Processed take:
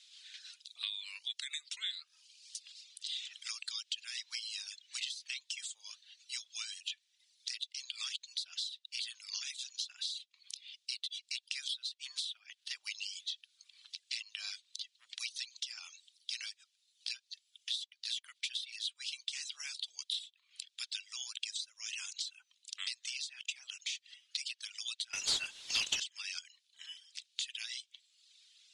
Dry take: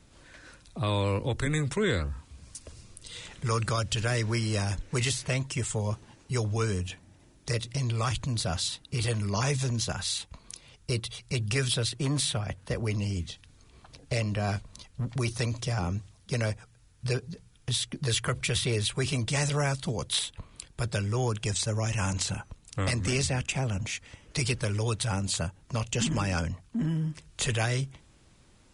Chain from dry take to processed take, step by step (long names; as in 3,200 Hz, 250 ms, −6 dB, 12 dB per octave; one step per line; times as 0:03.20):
four-pole ladder high-pass 3,000 Hz, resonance 45%
downward compressor 10 to 1, threshold −49 dBFS, peak gain reduction 20.5 dB
reverb reduction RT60 1.1 s
0:25.13–0:26.00: power curve on the samples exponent 0.5
high-frequency loss of the air 78 metres
level +16 dB